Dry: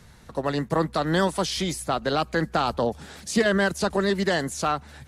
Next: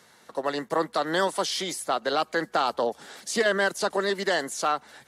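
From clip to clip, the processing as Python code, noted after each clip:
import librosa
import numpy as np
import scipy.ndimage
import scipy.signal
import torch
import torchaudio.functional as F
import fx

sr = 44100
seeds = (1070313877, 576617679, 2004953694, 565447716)

y = scipy.signal.sosfilt(scipy.signal.butter(2, 370.0, 'highpass', fs=sr, output='sos'), x)
y = fx.notch(y, sr, hz=2500.0, q=14.0)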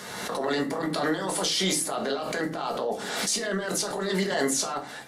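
y = fx.over_compress(x, sr, threshold_db=-32.0, ratio=-1.0)
y = fx.room_shoebox(y, sr, seeds[0], volume_m3=180.0, walls='furnished', distance_m=1.4)
y = fx.pre_swell(y, sr, db_per_s=33.0)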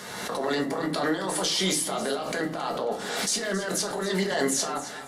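y = fx.echo_feedback(x, sr, ms=271, feedback_pct=31, wet_db=-14.0)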